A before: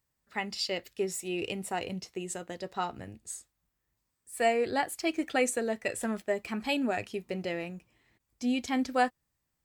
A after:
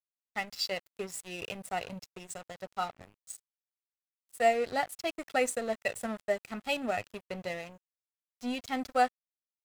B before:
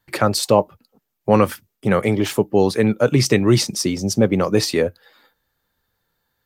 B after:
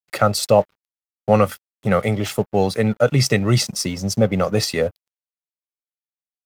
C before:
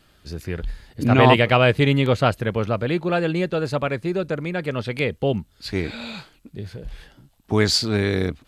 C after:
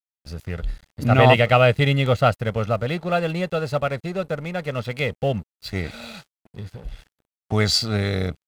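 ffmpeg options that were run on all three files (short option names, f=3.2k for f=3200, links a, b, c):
-af "aecho=1:1:1.5:0.56,aeval=exprs='sgn(val(0))*max(abs(val(0))-0.00944,0)':c=same,volume=-1dB"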